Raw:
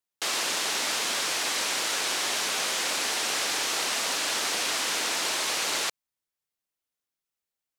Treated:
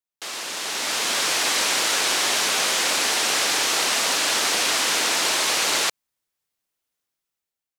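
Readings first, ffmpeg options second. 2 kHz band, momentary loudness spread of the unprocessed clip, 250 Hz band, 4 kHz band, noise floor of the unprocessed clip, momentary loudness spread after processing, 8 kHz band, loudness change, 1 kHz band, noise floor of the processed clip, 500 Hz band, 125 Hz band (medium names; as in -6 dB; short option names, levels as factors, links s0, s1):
+6.0 dB, 0 LU, +6.0 dB, +6.0 dB, under -85 dBFS, 6 LU, +6.0 dB, +6.0 dB, +6.0 dB, under -85 dBFS, +6.0 dB, +6.0 dB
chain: -af "dynaudnorm=f=250:g=7:m=3.76,volume=0.596"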